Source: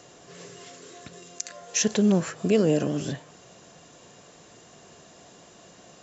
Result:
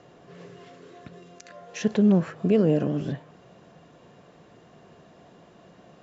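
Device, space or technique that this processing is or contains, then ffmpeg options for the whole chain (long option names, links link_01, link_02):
phone in a pocket: -af "lowpass=3800,equalizer=frequency=170:width_type=o:width=0.83:gain=3,highshelf=frequency=2100:gain=-8"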